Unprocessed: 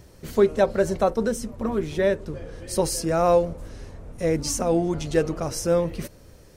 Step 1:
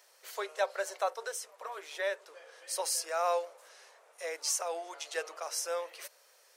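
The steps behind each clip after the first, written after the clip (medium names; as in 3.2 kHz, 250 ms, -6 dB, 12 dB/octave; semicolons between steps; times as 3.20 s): Bessel high-pass 930 Hz, order 8; trim -3.5 dB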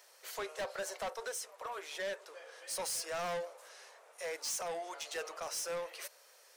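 saturation -36 dBFS, distortion -6 dB; trim +1.5 dB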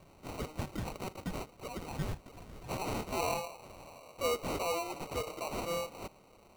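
high-pass sweep 1.6 kHz -> 130 Hz, 2.34–6.31 s; sample-and-hold 26×; trim +2 dB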